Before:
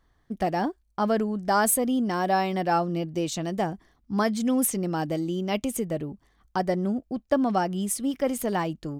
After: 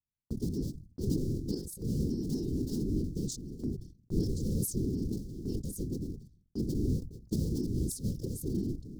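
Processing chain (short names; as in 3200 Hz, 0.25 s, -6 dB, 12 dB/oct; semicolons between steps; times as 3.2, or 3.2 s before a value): cycle switcher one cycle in 2, inverted; elliptic band-stop 270–4900 Hz, stop band 40 dB; tilt -2 dB/oct; whisperiser; gate -48 dBFS, range -35 dB; chopper 0.55 Hz, depth 65%, duty 85%; sustainer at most 100 dB/s; gain -5.5 dB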